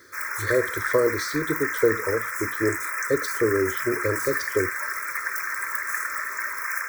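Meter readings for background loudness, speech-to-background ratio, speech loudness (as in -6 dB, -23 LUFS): -27.5 LUFS, 1.0 dB, -26.5 LUFS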